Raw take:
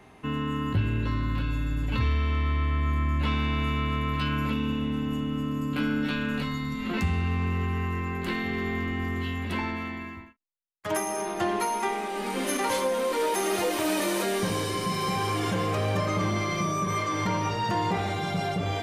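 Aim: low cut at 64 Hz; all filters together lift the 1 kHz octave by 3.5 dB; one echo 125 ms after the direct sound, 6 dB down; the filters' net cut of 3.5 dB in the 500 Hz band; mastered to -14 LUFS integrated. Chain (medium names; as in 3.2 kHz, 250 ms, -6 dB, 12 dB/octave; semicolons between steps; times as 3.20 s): high-pass 64 Hz; peaking EQ 500 Hz -6 dB; peaking EQ 1 kHz +5.5 dB; delay 125 ms -6 dB; trim +13 dB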